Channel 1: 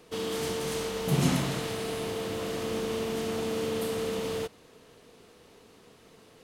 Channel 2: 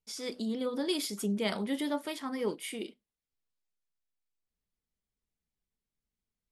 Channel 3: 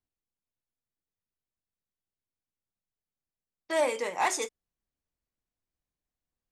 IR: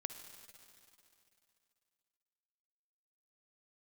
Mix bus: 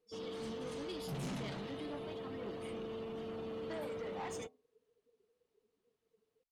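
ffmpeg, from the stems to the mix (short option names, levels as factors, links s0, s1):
-filter_complex "[0:a]volume=0.335[s0];[1:a]volume=0.266[s1];[2:a]lowshelf=f=490:g=8.5,bandreject=f=84.75:t=h:w=4,bandreject=f=169.5:t=h:w=4,bandreject=f=254.25:t=h:w=4,bandreject=f=339:t=h:w=4,bandreject=f=423.75:t=h:w=4,bandreject=f=508.5:t=h:w=4,bandreject=f=593.25:t=h:w=4,bandreject=f=678:t=h:w=4,bandreject=f=762.75:t=h:w=4,bandreject=f=847.5:t=h:w=4,bandreject=f=932.25:t=h:w=4,bandreject=f=1017:t=h:w=4,bandreject=f=1101.75:t=h:w=4,bandreject=f=1186.5:t=h:w=4,acompressor=threshold=0.0178:ratio=6,volume=0.596[s2];[s0][s1][s2]amix=inputs=3:normalize=0,afftdn=nr=22:nf=-50,asoftclip=type=tanh:threshold=0.0141"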